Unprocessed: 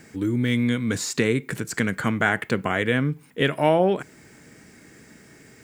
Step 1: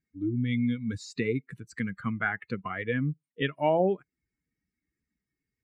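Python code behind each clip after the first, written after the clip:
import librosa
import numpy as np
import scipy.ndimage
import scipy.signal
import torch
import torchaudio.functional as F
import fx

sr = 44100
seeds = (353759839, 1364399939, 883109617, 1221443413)

y = fx.bin_expand(x, sr, power=2.0)
y = scipy.signal.sosfilt(scipy.signal.bessel(2, 3100.0, 'lowpass', norm='mag', fs=sr, output='sos'), y)
y = y * 10.0 ** (-3.0 / 20.0)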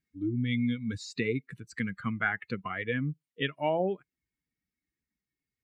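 y = fx.peak_eq(x, sr, hz=3300.0, db=5.0, octaves=1.5)
y = fx.rider(y, sr, range_db=3, speed_s=2.0)
y = y * 10.0 ** (-3.0 / 20.0)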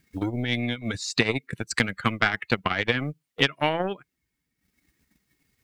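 y = fx.transient(x, sr, attack_db=10, sustain_db=-10)
y = fx.spectral_comp(y, sr, ratio=2.0)
y = y * 10.0 ** (3.5 / 20.0)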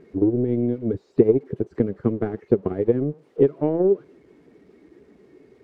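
y = x + 0.5 * 10.0 ** (-18.5 / 20.0) * np.diff(np.sign(x), prepend=np.sign(x[:1]))
y = fx.lowpass_res(y, sr, hz=400.0, q=4.9)
y = y * 10.0 ** (2.0 / 20.0)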